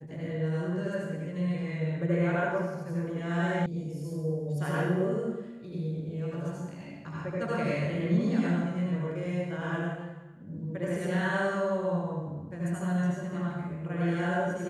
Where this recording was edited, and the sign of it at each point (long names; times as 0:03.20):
0:03.66: cut off before it has died away